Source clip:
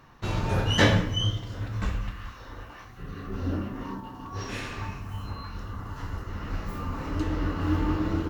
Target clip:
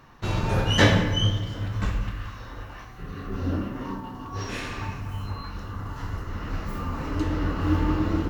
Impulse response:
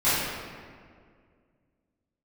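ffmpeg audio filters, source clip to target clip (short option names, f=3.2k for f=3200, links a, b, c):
-filter_complex "[0:a]asplit=2[a][b];[1:a]atrim=start_sample=2205,adelay=38[c];[b][c]afir=irnorm=-1:irlink=0,volume=-26.5dB[d];[a][d]amix=inputs=2:normalize=0,volume=2dB"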